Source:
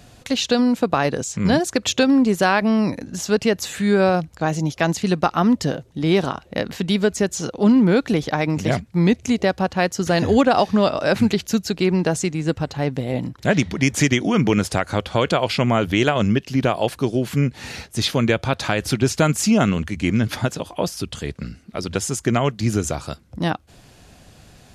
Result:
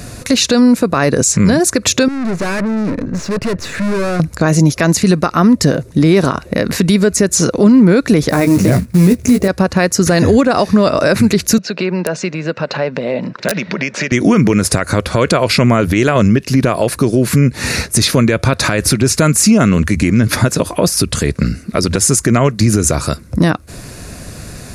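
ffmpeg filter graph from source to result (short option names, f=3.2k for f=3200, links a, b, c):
-filter_complex "[0:a]asettb=1/sr,asplit=3[a][b][c];[a]atrim=end=2.084[d];[b]atrim=start=2.08:end=4.2,asetpts=PTS-STARTPTS,afade=t=in:d=0.004:c=qsin,afade=t=out:st=2.116:d=0.004:c=qsin,aeval=exprs='(tanh(39.8*val(0)+0.35)-tanh(0.35))/39.8':c=same,adynamicsmooth=sensitivity=5:basefreq=2.2k[e];[c]atrim=start=4.196[f];[d][e]acrossfade=d=0.004:c1=hsin:c2=qsin[g];[g][f]acrossfade=d=0.004:c1=qsin:c2=hsin,asettb=1/sr,asplit=3[h][i][j];[h]atrim=end=8.294[k];[i]atrim=start=8.29:end=9.48,asetpts=PTS-STARTPTS,afade=t=in:d=0.004:c=qsin,afade=t=out:st=1.186:d=0.004:c=qsin,tiltshelf=f=940:g=3.5,acrusher=bits=5:mode=log:mix=0:aa=0.000001,asplit=2[l][m];[m]adelay=16,volume=-6dB[n];[l][n]amix=inputs=2:normalize=0,atrim=end_sample=52479[o];[j]atrim=start=9.476[p];[k][o]acrossfade=d=0.004:c1=hsin:c2=qsin[q];[q][p]acrossfade=d=0.004:c1=qsin:c2=hsin,asettb=1/sr,asplit=3[r][s][t];[r]atrim=end=11.584[u];[s]atrim=start=11.58:end=14.12,asetpts=PTS-STARTPTS,afade=t=in:d=0.004:c=qsin,afade=t=out:st=2.536:d=0.004:c=qsin,acompressor=threshold=-31dB:ratio=4:attack=3.2:release=140:knee=1:detection=peak,highpass=f=180:w=0.5412,highpass=f=180:w=1.3066,equalizer=f=290:t=q:w=4:g=-9,equalizer=f=580:t=q:w=4:g=7,equalizer=f=900:t=q:w=4:g=4,equalizer=f=1.5k:t=q:w=4:g=5,equalizer=f=2.7k:t=q:w=4:g=7,lowpass=f=5k:w=0.5412,lowpass=f=5k:w=1.3066,aeval=exprs='(mod(8.41*val(0)+1,2)-1)/8.41':c=same[v];[t]atrim=start=14.116[w];[u][v]acrossfade=d=0.004:c1=hsin:c2=qsin[x];[x][w]acrossfade=d=0.004:c1=qsin:c2=hsin,acompressor=threshold=-26dB:ratio=2,equalizer=f=800:t=o:w=0.33:g=-10,equalizer=f=3.15k:t=o:w=0.33:g=-12,equalizer=f=10k:t=o:w=0.33:g=7,alimiter=level_in=18.5dB:limit=-1dB:release=50:level=0:latency=1,volume=-1dB"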